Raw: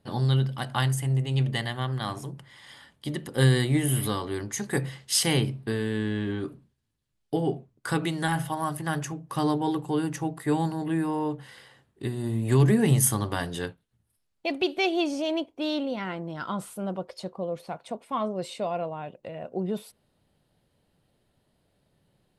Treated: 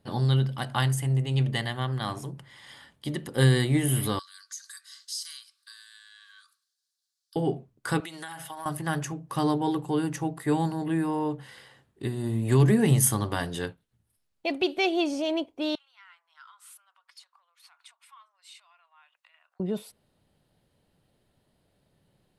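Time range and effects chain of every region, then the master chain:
4.19–7.36 s: resonant high shelf 3.8 kHz +11 dB, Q 1.5 + compression 2.5:1, threshold -37 dBFS + rippled Chebyshev high-pass 1.1 kHz, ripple 9 dB
8.00–8.66 s: high-pass 1.4 kHz 6 dB/octave + compression 10:1, threshold -36 dBFS + comb 6.3 ms, depth 43%
15.75–19.60 s: compression, threshold -45 dBFS + steep high-pass 1.1 kHz
whole clip: none

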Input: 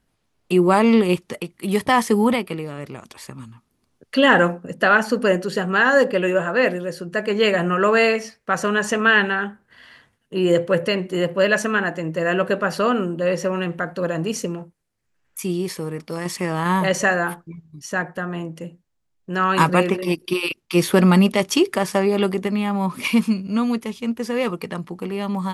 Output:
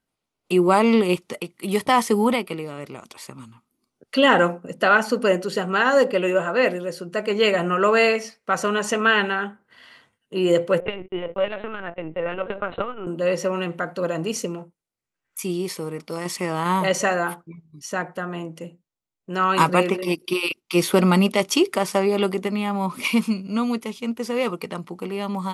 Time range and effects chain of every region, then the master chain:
10.80–13.07 s: gate -31 dBFS, range -31 dB + LPC vocoder at 8 kHz pitch kept + transformer saturation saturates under 130 Hz
whole clip: spectral noise reduction 8 dB; bass shelf 130 Hz -11.5 dB; band-stop 1.7 kHz, Q 7.5

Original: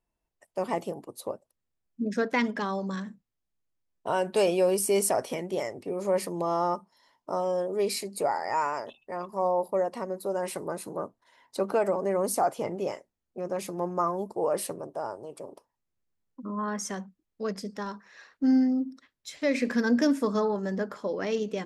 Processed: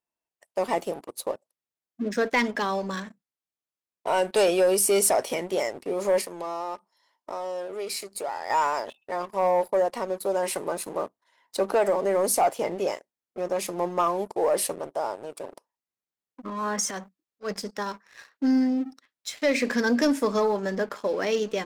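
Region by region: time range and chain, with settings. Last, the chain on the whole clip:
6.21–8.50 s: high-pass 240 Hz + compression 2:1, threshold -41 dBFS
16.49–17.52 s: transient shaper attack -9 dB, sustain +8 dB + upward expansion, over -43 dBFS
whole clip: high-pass 490 Hz 6 dB/octave; dynamic bell 1.3 kHz, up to -3 dB, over -41 dBFS, Q 1.5; waveshaping leveller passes 2

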